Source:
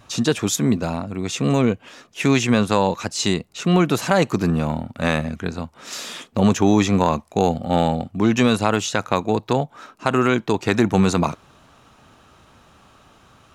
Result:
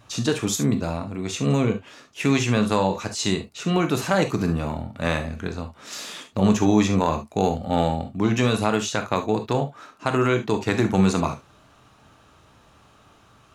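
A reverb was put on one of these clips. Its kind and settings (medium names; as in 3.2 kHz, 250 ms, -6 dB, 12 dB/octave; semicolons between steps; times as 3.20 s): gated-style reverb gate 90 ms flat, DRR 6 dB; trim -4 dB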